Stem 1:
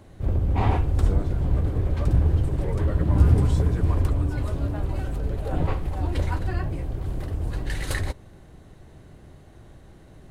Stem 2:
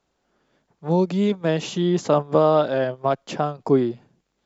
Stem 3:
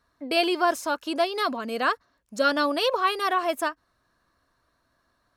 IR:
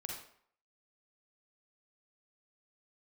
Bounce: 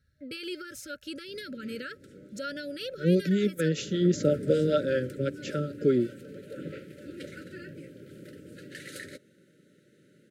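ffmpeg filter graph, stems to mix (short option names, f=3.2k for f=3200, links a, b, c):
-filter_complex "[0:a]highpass=f=170:w=0.5412,highpass=f=170:w=1.3066,adelay=1050,volume=-7.5dB,afade=t=in:st=3.73:d=0.31:silence=0.281838[a];[1:a]acrossover=split=460[b][c];[b]aeval=exprs='val(0)*(1-0.7/2+0.7/2*cos(2*PI*5.2*n/s))':c=same[d];[c]aeval=exprs='val(0)*(1-0.7/2-0.7/2*cos(2*PI*5.2*n/s))':c=same[e];[d][e]amix=inputs=2:normalize=0,adelay=2150,volume=-0.5dB[f];[2:a]lowshelf=f=200:t=q:w=1.5:g=13,volume=-6dB[g];[a][g]amix=inputs=2:normalize=0,alimiter=level_in=3.5dB:limit=-24dB:level=0:latency=1:release=86,volume=-3.5dB,volume=0dB[h];[f][h]amix=inputs=2:normalize=0,highpass=53,afftfilt=real='re*(1-between(b*sr/4096,610,1300))':imag='im*(1-between(b*sr/4096,610,1300))':win_size=4096:overlap=0.75,adynamicequalizer=threshold=0.00251:dfrequency=2800:dqfactor=2.4:tfrequency=2800:tqfactor=2.4:attack=5:release=100:ratio=0.375:range=2:mode=cutabove:tftype=bell"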